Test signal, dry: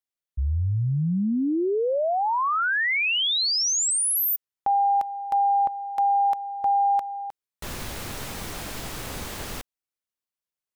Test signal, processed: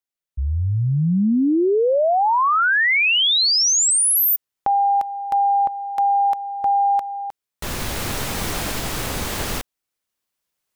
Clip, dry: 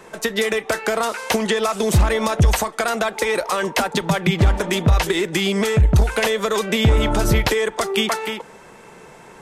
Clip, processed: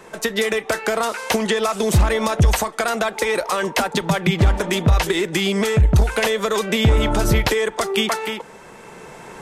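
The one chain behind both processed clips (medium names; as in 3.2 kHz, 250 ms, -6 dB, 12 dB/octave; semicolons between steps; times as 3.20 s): recorder AGC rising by 5.1 dB/s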